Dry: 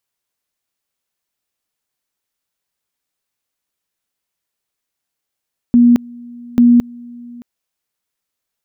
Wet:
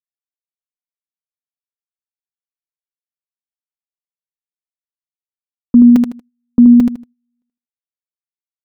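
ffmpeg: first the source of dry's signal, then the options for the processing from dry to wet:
-f lavfi -i "aevalsrc='pow(10,(-5-25.5*gte(mod(t,0.84),0.22))/20)*sin(2*PI*240*t)':duration=1.68:sample_rate=44100"
-filter_complex "[0:a]agate=range=-40dB:threshold=-20dB:ratio=16:detection=peak,aecho=1:1:4.1:0.45,asplit=2[link_01][link_02];[link_02]aecho=0:1:78|156|234:0.562|0.141|0.0351[link_03];[link_01][link_03]amix=inputs=2:normalize=0"

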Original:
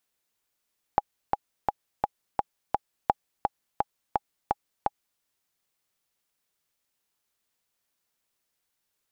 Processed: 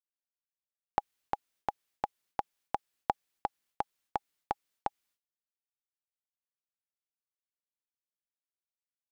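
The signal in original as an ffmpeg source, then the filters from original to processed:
-f lavfi -i "aevalsrc='pow(10,(-6.5-3.5*gte(mod(t,6*60/170),60/170))/20)*sin(2*PI*823*mod(t,60/170))*exp(-6.91*mod(t,60/170)/0.03)':duration=4.23:sample_rate=44100"
-af "bass=frequency=250:gain=-6,treble=frequency=4000:gain=-3,agate=range=-33dB:threshold=-59dB:ratio=3:detection=peak,equalizer=frequency=690:width=0.63:gain=-5.5"

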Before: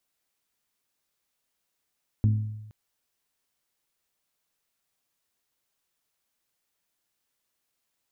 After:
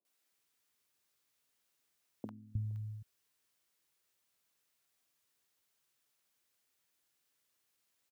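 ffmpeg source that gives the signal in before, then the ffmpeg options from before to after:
-f lavfi -i "aevalsrc='0.15*pow(10,-3*t/1)*sin(2*PI*107*t)+0.0531*pow(10,-3*t/0.616)*sin(2*PI*214*t)+0.0188*pow(10,-3*t/0.542)*sin(2*PI*256.8*t)+0.00668*pow(10,-3*t/0.463)*sin(2*PI*321*t)+0.00237*pow(10,-3*t/0.379)*sin(2*PI*428*t)':duration=0.47:sample_rate=44100"
-filter_complex "[0:a]highpass=73,acompressor=threshold=-34dB:ratio=6,acrossover=split=190|750[link_01][link_02][link_03];[link_03]adelay=50[link_04];[link_01]adelay=310[link_05];[link_05][link_02][link_04]amix=inputs=3:normalize=0"

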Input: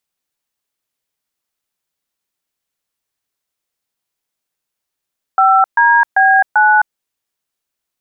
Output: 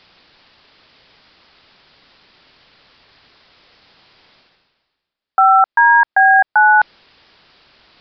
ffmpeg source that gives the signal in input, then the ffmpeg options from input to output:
-f lavfi -i "aevalsrc='0.335*clip(min(mod(t,0.392),0.261-mod(t,0.392))/0.002,0,1)*(eq(floor(t/0.392),0)*(sin(2*PI*770*mod(t,0.392))+sin(2*PI*1336*mod(t,0.392)))+eq(floor(t/0.392),1)*(sin(2*PI*941*mod(t,0.392))+sin(2*PI*1633*mod(t,0.392)))+eq(floor(t/0.392),2)*(sin(2*PI*770*mod(t,0.392))+sin(2*PI*1633*mod(t,0.392)))+eq(floor(t/0.392),3)*(sin(2*PI*852*mod(t,0.392))+sin(2*PI*1477*mod(t,0.392))))':duration=1.568:sample_rate=44100"
-af "areverse,acompressor=mode=upward:threshold=-19dB:ratio=2.5,areverse,aresample=11025,aresample=44100"

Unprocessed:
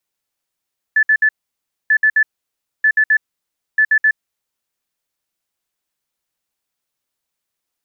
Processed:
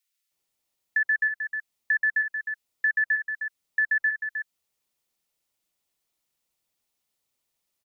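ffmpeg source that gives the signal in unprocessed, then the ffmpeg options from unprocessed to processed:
-f lavfi -i "aevalsrc='0.355*sin(2*PI*1740*t)*clip(min(mod(mod(t,0.94),0.13),0.07-mod(mod(t,0.94),0.13))/0.005,0,1)*lt(mod(t,0.94),0.39)':duration=3.76:sample_rate=44100"
-filter_complex "[0:a]bandreject=frequency=1600:width=12,acompressor=threshold=-21dB:ratio=2.5,acrossover=split=1400[link_01][link_02];[link_01]adelay=310[link_03];[link_03][link_02]amix=inputs=2:normalize=0"

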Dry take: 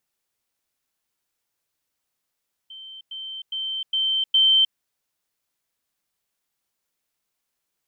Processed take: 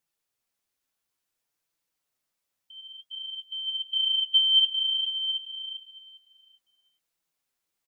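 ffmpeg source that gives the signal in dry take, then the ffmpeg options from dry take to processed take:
-f lavfi -i "aevalsrc='pow(10,(-37.5+6*floor(t/0.41))/20)*sin(2*PI*3110*t)*clip(min(mod(t,0.41),0.31-mod(t,0.41))/0.005,0,1)':duration=2.05:sample_rate=44100"
-filter_complex "[0:a]asplit=2[link_01][link_02];[link_02]aecho=0:1:401|802|1203|1604:0.398|0.119|0.0358|0.0107[link_03];[link_01][link_03]amix=inputs=2:normalize=0,flanger=delay=5.9:depth=5.2:regen=42:speed=0.56:shape=sinusoidal,asplit=2[link_04][link_05];[link_05]aecho=0:1:721:0.282[link_06];[link_04][link_06]amix=inputs=2:normalize=0"

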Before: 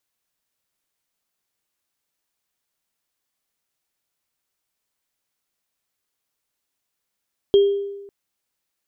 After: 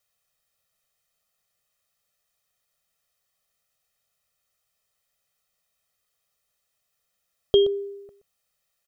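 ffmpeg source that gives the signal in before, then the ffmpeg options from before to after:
-f lavfi -i "aevalsrc='0.376*pow(10,-3*t/1.06)*sin(2*PI*400*t)+0.0562*pow(10,-3*t/0.48)*sin(2*PI*3230*t)':duration=0.55:sample_rate=44100"
-af "aecho=1:1:1.6:0.9,aecho=1:1:124:0.168"

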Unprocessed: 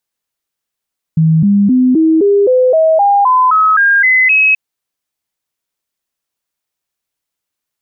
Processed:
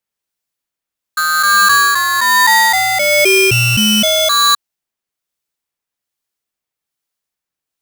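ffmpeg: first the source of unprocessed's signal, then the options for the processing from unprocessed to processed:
-f lavfi -i "aevalsrc='0.501*clip(min(mod(t,0.26),0.26-mod(t,0.26))/0.005,0,1)*sin(2*PI*160*pow(2,floor(t/0.26)/3)*mod(t,0.26))':duration=3.38:sample_rate=44100"
-filter_complex "[0:a]acrossover=split=1600[link_01][link_02];[link_01]aeval=exprs='val(0)*(1-0.5/2+0.5/2*cos(2*PI*1.2*n/s))':channel_layout=same[link_03];[link_02]aeval=exprs='val(0)*(1-0.5/2-0.5/2*cos(2*PI*1.2*n/s))':channel_layout=same[link_04];[link_03][link_04]amix=inputs=2:normalize=0,aeval=exprs='0.501*(cos(1*acos(clip(val(0)/0.501,-1,1)))-cos(1*PI/2))+0.0224*(cos(6*acos(clip(val(0)/0.501,-1,1)))-cos(6*PI/2))':channel_layout=same,aeval=exprs='val(0)*sgn(sin(2*PI*1400*n/s))':channel_layout=same"

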